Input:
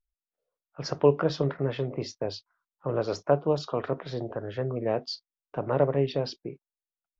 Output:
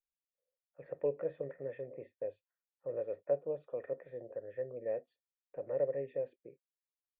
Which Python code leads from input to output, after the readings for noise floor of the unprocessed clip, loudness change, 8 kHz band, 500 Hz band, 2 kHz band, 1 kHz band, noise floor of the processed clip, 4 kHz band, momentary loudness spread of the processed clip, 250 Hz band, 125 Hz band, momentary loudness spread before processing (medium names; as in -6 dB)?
under -85 dBFS, -10.5 dB, no reading, -9.0 dB, -17.0 dB, -21.5 dB, under -85 dBFS, under -40 dB, 12 LU, -20.0 dB, -22.5 dB, 14 LU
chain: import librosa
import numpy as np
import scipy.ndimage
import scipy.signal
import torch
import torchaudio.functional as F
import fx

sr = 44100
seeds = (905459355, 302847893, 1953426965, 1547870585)

y = fx.formant_cascade(x, sr, vowel='e')
y = y * librosa.db_to_amplitude(-3.0)